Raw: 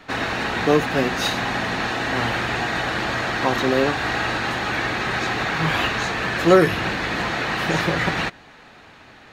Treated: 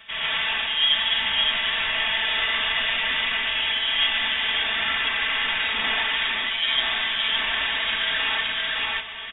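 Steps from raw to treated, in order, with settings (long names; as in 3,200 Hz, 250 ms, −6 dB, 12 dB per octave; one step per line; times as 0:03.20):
on a send: single-tap delay 564 ms −7 dB
on the sum: voice inversion scrambler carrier 3,600 Hz
parametric band 270 Hz −5 dB 2.7 octaves
reversed playback
downward compressor 4 to 1, threshold −34 dBFS, peak gain reduction 20.5 dB
reversed playback
comb filter 4.5 ms
reverb whose tail is shaped and stops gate 170 ms rising, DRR −4.5 dB
level +3.5 dB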